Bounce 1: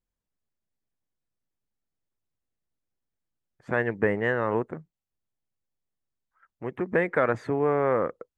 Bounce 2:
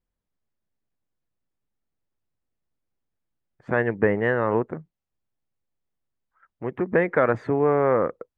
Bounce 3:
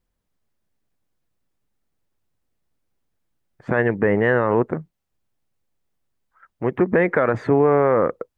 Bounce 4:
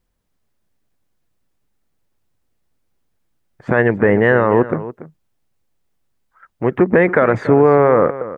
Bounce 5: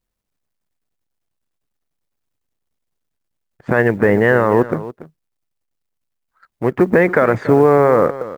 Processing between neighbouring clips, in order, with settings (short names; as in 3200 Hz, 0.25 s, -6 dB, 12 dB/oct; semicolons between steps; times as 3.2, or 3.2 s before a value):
LPF 2100 Hz 6 dB/oct; gain +4 dB
limiter -15 dBFS, peak gain reduction 8 dB; gain +7.5 dB
echo 0.285 s -15 dB; gain +5 dB
G.711 law mismatch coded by A